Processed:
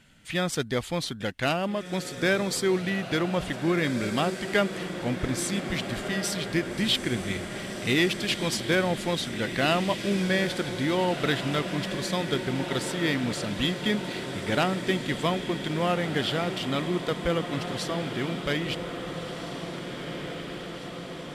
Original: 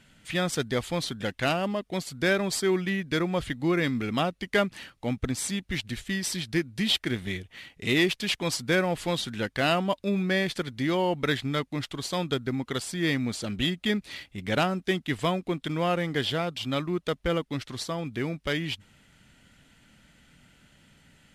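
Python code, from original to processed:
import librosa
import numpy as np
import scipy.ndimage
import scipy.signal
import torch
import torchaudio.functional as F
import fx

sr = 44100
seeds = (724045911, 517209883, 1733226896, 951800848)

y = fx.echo_diffused(x, sr, ms=1728, feedback_pct=70, wet_db=-8.5)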